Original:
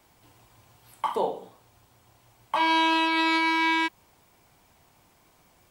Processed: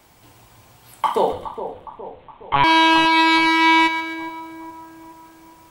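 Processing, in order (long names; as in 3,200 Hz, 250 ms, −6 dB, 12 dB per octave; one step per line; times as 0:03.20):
0:01.32–0:02.64: one-pitch LPC vocoder at 8 kHz 140 Hz
echo with a time of its own for lows and highs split 1,200 Hz, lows 415 ms, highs 131 ms, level −10.5 dB
level +8 dB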